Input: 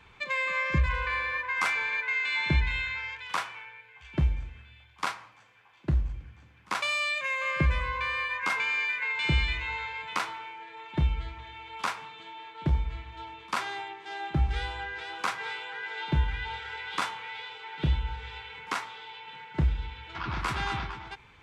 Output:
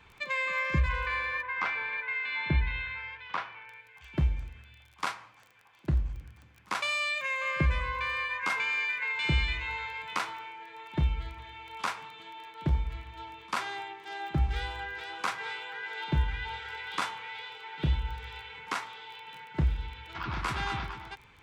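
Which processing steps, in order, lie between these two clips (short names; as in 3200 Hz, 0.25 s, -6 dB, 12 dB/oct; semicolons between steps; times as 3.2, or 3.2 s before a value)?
crackle 16/s -40 dBFS; 1.42–3.69 air absorption 240 m; gain -1.5 dB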